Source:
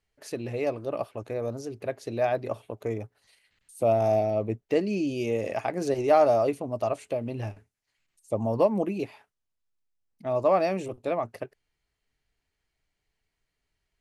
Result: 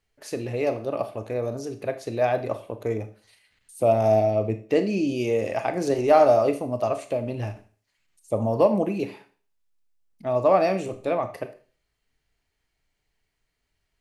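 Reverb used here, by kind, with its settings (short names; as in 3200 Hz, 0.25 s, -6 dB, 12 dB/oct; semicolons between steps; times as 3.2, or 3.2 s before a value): Schroeder reverb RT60 0.41 s, combs from 25 ms, DRR 9 dB; gain +3 dB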